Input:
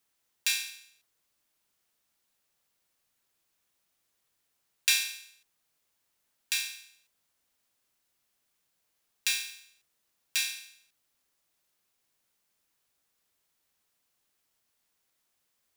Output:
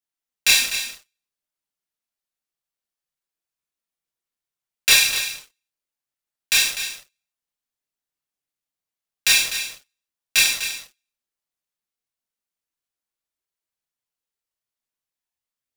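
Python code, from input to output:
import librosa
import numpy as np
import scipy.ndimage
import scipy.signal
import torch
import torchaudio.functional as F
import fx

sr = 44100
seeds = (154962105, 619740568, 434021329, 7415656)

p1 = fx.leveller(x, sr, passes=5)
p2 = fx.chorus_voices(p1, sr, voices=6, hz=0.51, base_ms=27, depth_ms=4.5, mix_pct=50)
y = p2 + fx.echo_single(p2, sr, ms=249, db=-10.5, dry=0)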